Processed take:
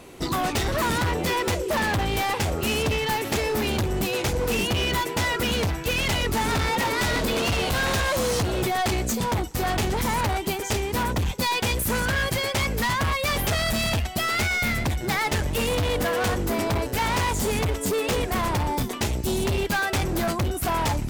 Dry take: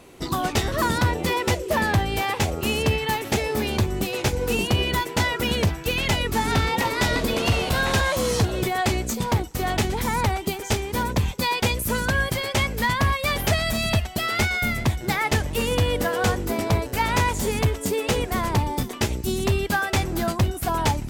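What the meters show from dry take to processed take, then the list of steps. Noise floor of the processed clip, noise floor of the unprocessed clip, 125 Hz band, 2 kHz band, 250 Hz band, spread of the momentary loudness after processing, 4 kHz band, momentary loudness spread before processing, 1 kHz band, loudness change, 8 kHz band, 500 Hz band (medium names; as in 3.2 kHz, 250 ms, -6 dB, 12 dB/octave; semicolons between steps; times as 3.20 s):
-31 dBFS, -34 dBFS, -3.0 dB, -1.0 dB, -1.5 dB, 2 LU, -0.5 dB, 3 LU, -1.0 dB, -1.0 dB, 0.0 dB, -0.5 dB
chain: hard clipper -24.5 dBFS, distortion -7 dB; trim +3 dB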